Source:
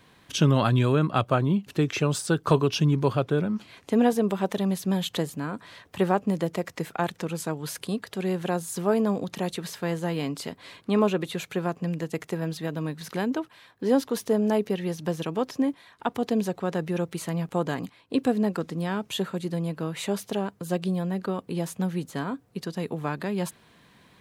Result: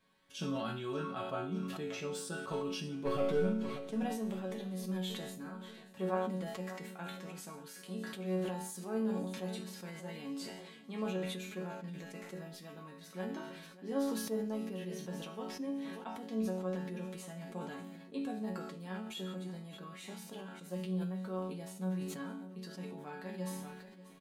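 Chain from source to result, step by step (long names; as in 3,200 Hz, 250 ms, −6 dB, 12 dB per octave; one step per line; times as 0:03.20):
0:03.05–0:03.54: leveller curve on the samples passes 2
resonators tuned to a chord F#3 minor, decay 0.47 s
repeating echo 587 ms, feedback 51%, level −17.5 dB
level that may fall only so fast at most 37 dB per second
level +3.5 dB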